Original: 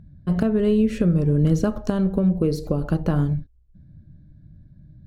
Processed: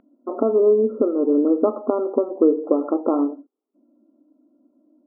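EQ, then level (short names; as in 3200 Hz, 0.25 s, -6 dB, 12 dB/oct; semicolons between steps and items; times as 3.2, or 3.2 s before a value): brick-wall FIR band-pass 240–1400 Hz; air absorption 500 m; +8.5 dB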